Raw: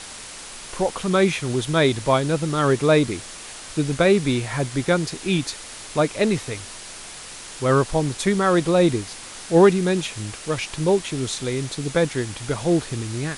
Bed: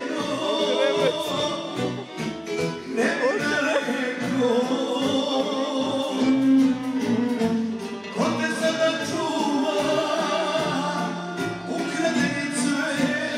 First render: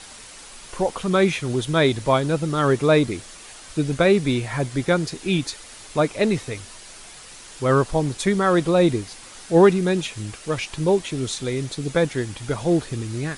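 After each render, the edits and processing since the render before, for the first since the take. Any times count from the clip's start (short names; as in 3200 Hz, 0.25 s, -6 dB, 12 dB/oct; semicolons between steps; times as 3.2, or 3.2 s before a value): denoiser 6 dB, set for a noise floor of -38 dBFS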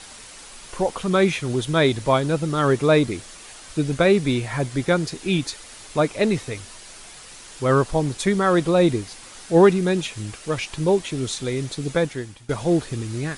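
11.91–12.49 fade out, to -18 dB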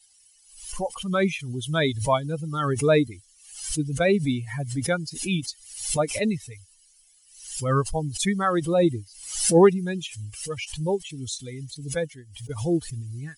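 per-bin expansion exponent 2; backwards sustainer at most 83 dB/s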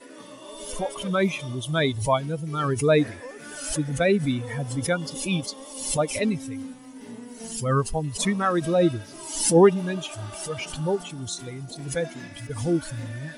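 add bed -17.5 dB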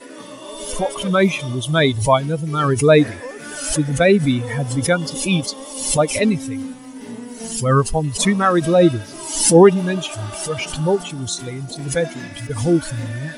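gain +7.5 dB; limiter -1 dBFS, peak gain reduction 3 dB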